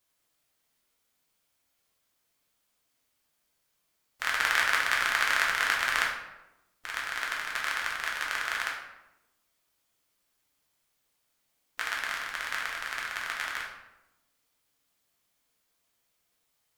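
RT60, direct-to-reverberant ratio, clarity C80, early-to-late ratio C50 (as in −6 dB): 0.95 s, −2.5 dB, 6.5 dB, 3.5 dB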